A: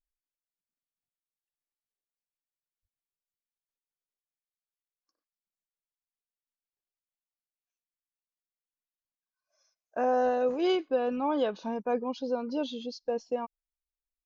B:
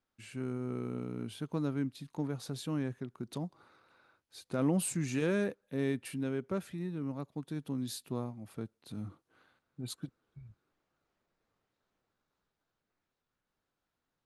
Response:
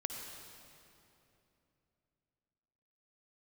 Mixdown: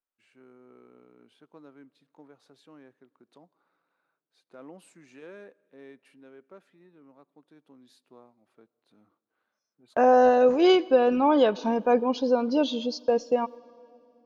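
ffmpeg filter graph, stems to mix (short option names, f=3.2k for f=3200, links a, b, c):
-filter_complex "[0:a]agate=range=-22dB:threshold=-48dB:ratio=16:detection=peak,dynaudnorm=f=130:g=11:m=5.5dB,volume=1.5dB,asplit=2[a][b];[b]volume=-18dB[c];[1:a]highpass=410,aemphasis=mode=reproduction:type=75fm,volume=-11.5dB,asplit=2[d][e];[e]volume=-22.5dB[f];[2:a]atrim=start_sample=2205[g];[c][f]amix=inputs=2:normalize=0[h];[h][g]afir=irnorm=-1:irlink=0[i];[a][d][i]amix=inputs=3:normalize=0"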